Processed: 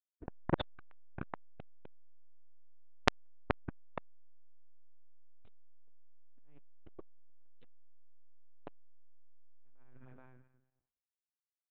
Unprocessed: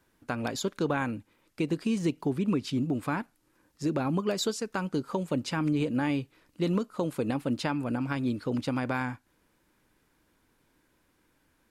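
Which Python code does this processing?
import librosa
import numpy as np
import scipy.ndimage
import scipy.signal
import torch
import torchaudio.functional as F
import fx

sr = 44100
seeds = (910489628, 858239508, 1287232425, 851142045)

y = fx.reverse_delay_fb(x, sr, ms=107, feedback_pct=55, wet_db=-12.5)
y = fx.env_lowpass(y, sr, base_hz=830.0, full_db=-24.5)
y = fx.level_steps(y, sr, step_db=22, at=(5.2, 7.66))
y = np.sign(y) * np.maximum(np.abs(y) - 10.0 ** (-59.0 / 20.0), 0.0)
y = fx.rotary(y, sr, hz=0.9)
y = fx.lpc_vocoder(y, sr, seeds[0], excitation='pitch_kept', order=10)
y = fx.air_absorb(y, sr, metres=420.0)
y = fx.echo_feedback(y, sr, ms=426, feedback_pct=17, wet_db=-7)
y = fx.transformer_sat(y, sr, knee_hz=2700.0)
y = F.gain(torch.from_numpy(y), 16.0).numpy()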